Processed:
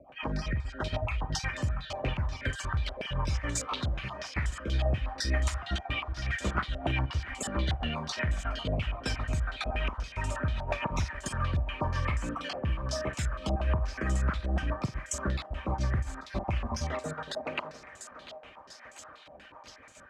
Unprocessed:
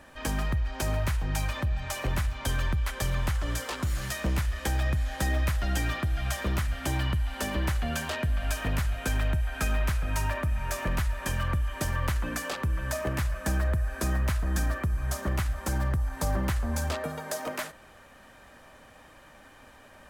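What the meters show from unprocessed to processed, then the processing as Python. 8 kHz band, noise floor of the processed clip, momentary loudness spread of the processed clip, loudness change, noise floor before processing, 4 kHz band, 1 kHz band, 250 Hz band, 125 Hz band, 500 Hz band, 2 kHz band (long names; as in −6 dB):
−3.0 dB, −52 dBFS, 15 LU, −3.0 dB, −53 dBFS, 0.0 dB, −1.0 dB, −2.5 dB, −3.0 dB, −1.0 dB, −2.0 dB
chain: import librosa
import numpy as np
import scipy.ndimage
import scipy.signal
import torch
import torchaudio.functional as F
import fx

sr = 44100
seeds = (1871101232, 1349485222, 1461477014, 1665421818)

y = fx.spec_dropout(x, sr, seeds[0], share_pct=31)
y = scipy.signal.sosfilt(scipy.signal.butter(2, 48.0, 'highpass', fs=sr, output='sos'), y)
y = fx.peak_eq(y, sr, hz=1700.0, db=-4.0, octaves=0.27)
y = fx.rotary(y, sr, hz=8.0)
y = fx.doubler(y, sr, ms=45.0, db=-12.0)
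y = fx.echo_thinned(y, sr, ms=694, feedback_pct=81, hz=410.0, wet_db=-14)
y = fx.filter_held_lowpass(y, sr, hz=8.3, low_hz=720.0, high_hz=7400.0)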